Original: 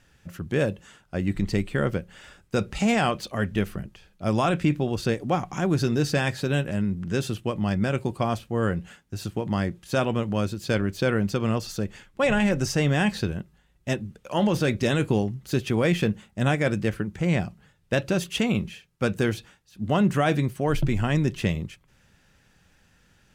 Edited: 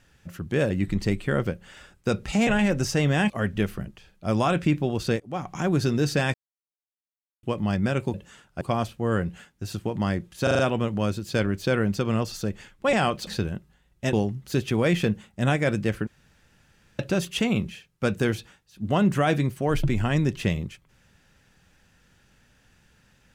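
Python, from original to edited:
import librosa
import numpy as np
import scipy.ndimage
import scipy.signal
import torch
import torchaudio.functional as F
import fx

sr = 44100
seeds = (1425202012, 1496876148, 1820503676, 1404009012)

y = fx.edit(x, sr, fx.move(start_s=0.7, length_s=0.47, to_s=8.12),
    fx.swap(start_s=2.94, length_s=0.34, other_s=12.28, other_length_s=0.83),
    fx.fade_in_from(start_s=5.18, length_s=0.4, floor_db=-21.0),
    fx.silence(start_s=6.32, length_s=1.09),
    fx.stutter(start_s=9.94, slice_s=0.04, count=5),
    fx.cut(start_s=13.97, length_s=1.15),
    fx.room_tone_fill(start_s=17.06, length_s=0.92), tone=tone)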